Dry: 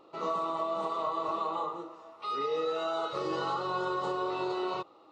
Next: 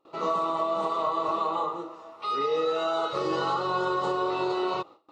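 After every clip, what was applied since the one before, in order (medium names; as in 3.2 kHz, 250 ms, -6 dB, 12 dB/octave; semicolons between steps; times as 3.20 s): gate with hold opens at -48 dBFS; trim +5 dB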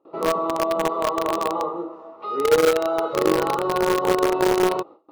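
band-pass filter 370 Hz, Q 0.75; in parallel at -5 dB: bit crusher 4-bit; on the sum: trim +8 dB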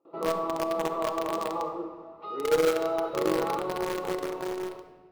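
fade out at the end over 1.56 s; simulated room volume 1900 m³, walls mixed, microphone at 0.76 m; trim -7.5 dB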